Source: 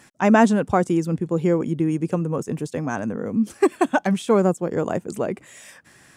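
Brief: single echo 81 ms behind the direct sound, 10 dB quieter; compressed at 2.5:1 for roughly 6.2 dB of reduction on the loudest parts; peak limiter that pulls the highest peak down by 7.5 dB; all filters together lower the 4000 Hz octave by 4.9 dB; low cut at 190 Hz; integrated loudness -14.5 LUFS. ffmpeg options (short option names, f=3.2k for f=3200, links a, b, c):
-af "highpass=190,equalizer=f=4k:t=o:g=-7,acompressor=threshold=-20dB:ratio=2.5,alimiter=limit=-16dB:level=0:latency=1,aecho=1:1:81:0.316,volume=13dB"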